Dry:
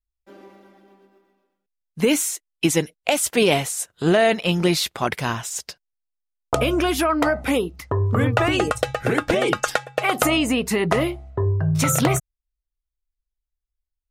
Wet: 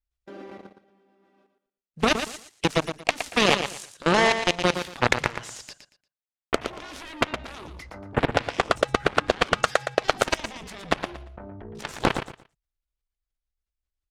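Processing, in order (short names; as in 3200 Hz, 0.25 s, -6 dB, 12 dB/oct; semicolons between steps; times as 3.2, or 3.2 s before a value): notch 930 Hz, Q 11; in parallel at -2 dB: negative-ratio compressor -27 dBFS, ratio -1; on the sum: added harmonics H 7 -12 dB, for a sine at -2 dBFS; air absorption 63 m; level quantiser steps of 22 dB; on a send: feedback echo 0.116 s, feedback 23%, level -8.5 dB; on the sum: gain +3 dB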